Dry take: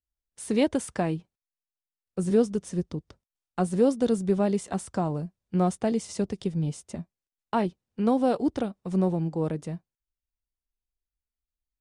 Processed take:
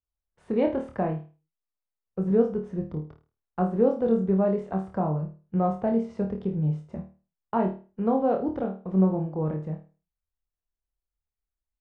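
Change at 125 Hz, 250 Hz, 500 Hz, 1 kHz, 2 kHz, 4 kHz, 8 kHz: +1.5 dB, 0.0 dB, +1.0 dB, +1.0 dB, −4.5 dB, below −10 dB, below −30 dB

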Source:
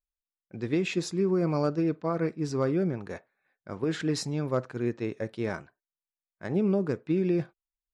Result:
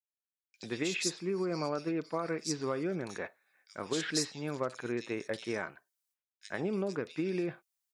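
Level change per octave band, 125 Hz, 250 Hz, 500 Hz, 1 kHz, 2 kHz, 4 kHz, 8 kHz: −11.0, −7.5, −6.0, −3.0, 0.0, +2.5, +4.5 decibels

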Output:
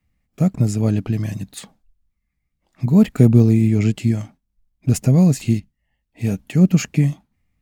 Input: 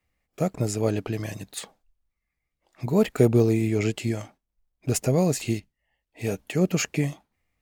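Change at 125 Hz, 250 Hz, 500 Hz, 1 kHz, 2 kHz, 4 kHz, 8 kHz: +10.5, +9.0, −1.5, −1.0, 0.0, 0.0, 0.0 decibels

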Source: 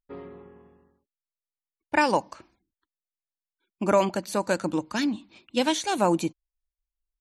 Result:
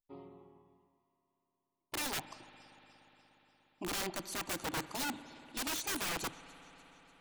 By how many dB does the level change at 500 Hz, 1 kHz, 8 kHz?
−19.5, −15.5, −2.5 decibels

